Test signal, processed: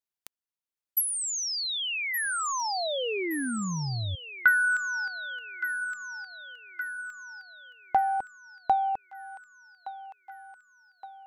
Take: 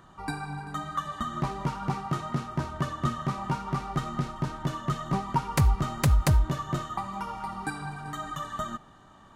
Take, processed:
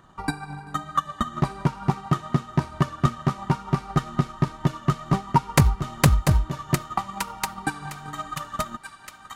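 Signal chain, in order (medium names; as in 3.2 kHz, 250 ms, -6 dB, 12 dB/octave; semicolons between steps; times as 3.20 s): feedback echo behind a high-pass 1168 ms, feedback 53%, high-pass 1.5 kHz, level -4 dB; transient shaper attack +10 dB, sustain -3 dB; trim -1 dB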